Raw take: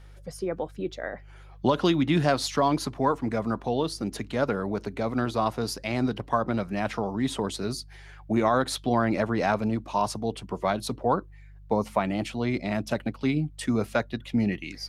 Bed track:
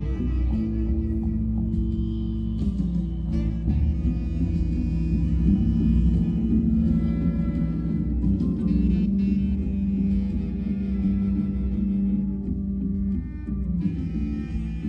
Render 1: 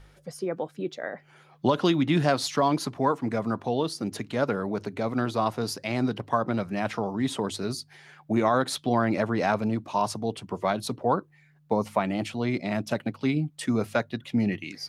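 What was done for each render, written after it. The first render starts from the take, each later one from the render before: de-hum 50 Hz, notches 2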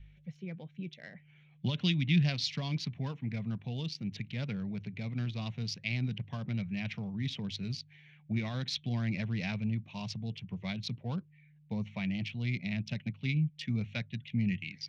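local Wiener filter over 9 samples; FFT filter 180 Hz 0 dB, 300 Hz -19 dB, 1.3 kHz -24 dB, 2.3 kHz +1 dB, 5.6 kHz -2 dB, 8.9 kHz -28 dB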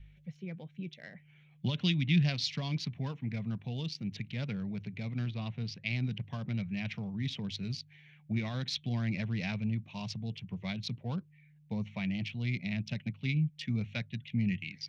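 5.29–5.86 s: Bessel low-pass 3.4 kHz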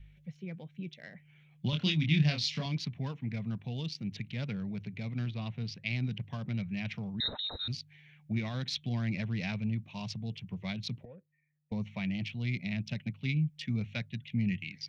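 1.70–2.66 s: doubling 26 ms -3.5 dB; 7.20–7.68 s: frequency inversion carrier 3.9 kHz; 11.05–11.72 s: cascade formant filter e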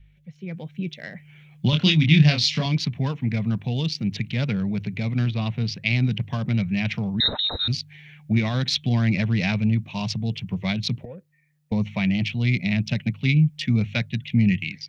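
level rider gain up to 12 dB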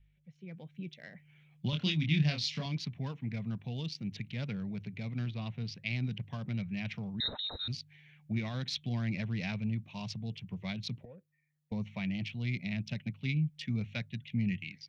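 trim -13 dB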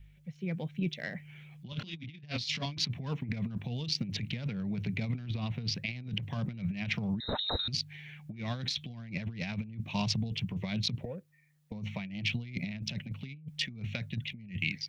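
in parallel at 0 dB: peak limiter -26 dBFS, peak gain reduction 9 dB; on the sum: compressor with a negative ratio -34 dBFS, ratio -0.5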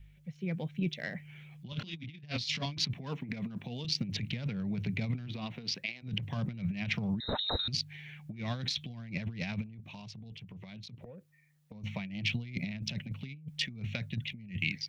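2.93–3.85 s: high-pass 170 Hz; 5.27–6.02 s: high-pass 150 Hz -> 420 Hz; 9.66–11.84 s: compression 8:1, threshold -44 dBFS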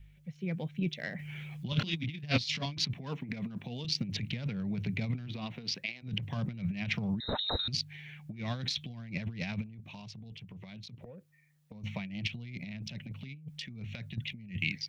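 1.19–2.38 s: gain +8 dB; 12.27–14.18 s: compression, threshold -37 dBFS

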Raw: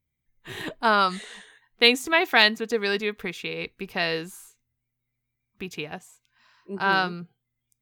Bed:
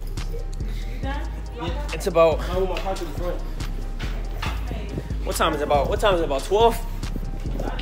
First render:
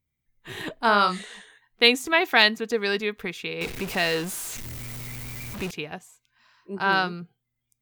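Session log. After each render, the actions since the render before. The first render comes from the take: 0.73–1.26 s: doubling 39 ms -8 dB; 3.61–5.71 s: jump at every zero crossing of -29.5 dBFS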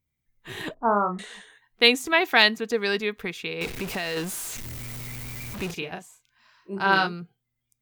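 0.74–1.19 s: steep low-pass 1.2 kHz; 3.66–4.17 s: compression, threshold -25 dBFS; 5.66–7.07 s: doubling 36 ms -6 dB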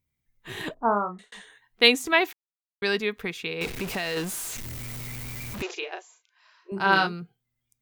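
0.85–1.32 s: fade out; 2.33–2.82 s: mute; 5.62–6.72 s: brick-wall FIR band-pass 320–7500 Hz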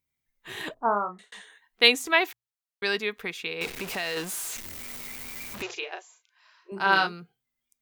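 bass shelf 280 Hz -10 dB; hum notches 60/120 Hz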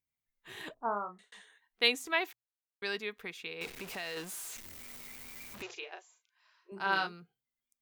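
trim -9 dB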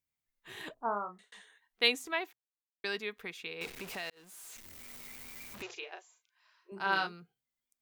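1.88–2.84 s: studio fade out; 4.10–5.24 s: fade in equal-power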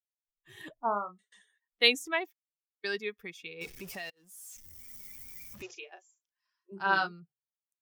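expander on every frequency bin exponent 1.5; level rider gain up to 5 dB

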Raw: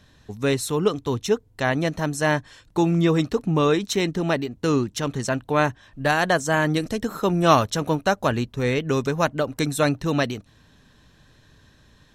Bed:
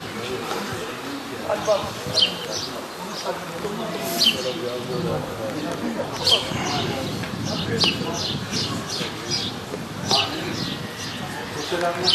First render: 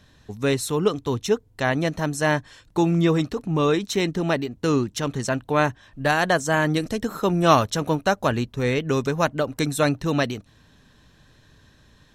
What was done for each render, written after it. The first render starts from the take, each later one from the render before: 3.12–3.94 s: transient shaper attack -7 dB, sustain -1 dB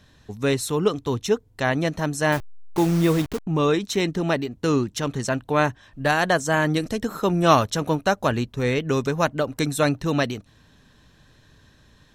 2.32–3.47 s: send-on-delta sampling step -28 dBFS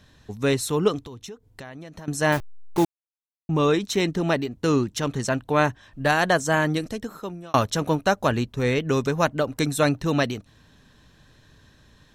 1.05–2.08 s: compression 8:1, threshold -36 dBFS; 2.85–3.49 s: mute; 6.52–7.54 s: fade out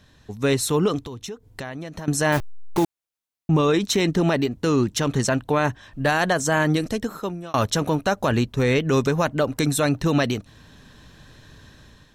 level rider gain up to 7 dB; peak limiter -10.5 dBFS, peak gain reduction 8 dB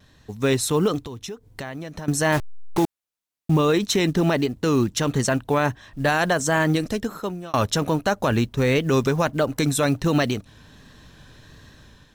vibrato 1.4 Hz 43 cents; short-mantissa float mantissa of 4-bit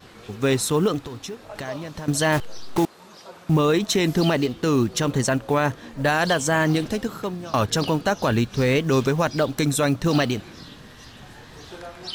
add bed -15.5 dB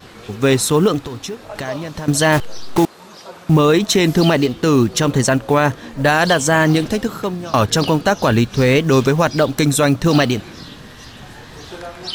trim +6.5 dB

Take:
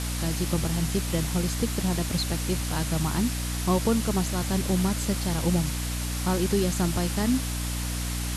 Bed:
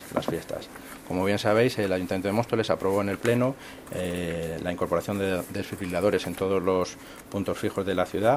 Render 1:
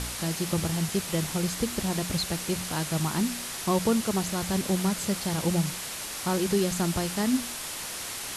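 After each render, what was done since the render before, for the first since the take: de-hum 60 Hz, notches 5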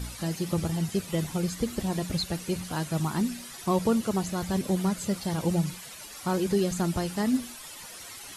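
noise reduction 12 dB, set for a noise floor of -36 dBFS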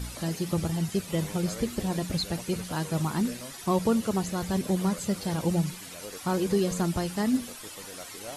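add bed -20 dB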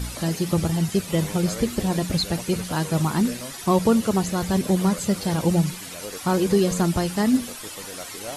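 trim +6 dB

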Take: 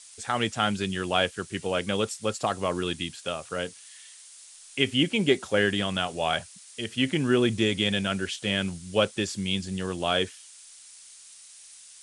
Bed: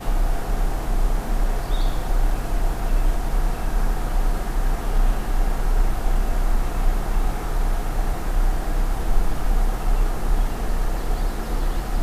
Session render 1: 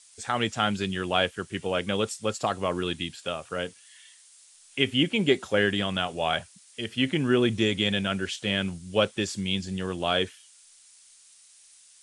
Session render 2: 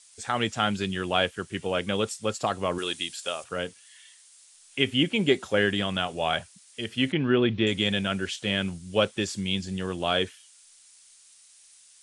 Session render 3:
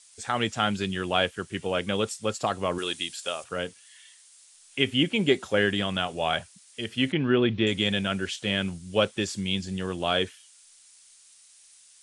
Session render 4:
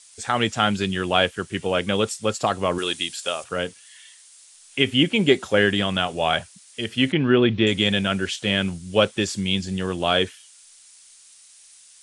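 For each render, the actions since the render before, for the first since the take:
noise print and reduce 6 dB
2.78–3.44 s: tone controls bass -14 dB, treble +9 dB; 7.12–7.67 s: inverse Chebyshev low-pass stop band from 9.1 kHz, stop band 50 dB
no audible change
trim +5 dB; peak limiter -2 dBFS, peak gain reduction 1.5 dB

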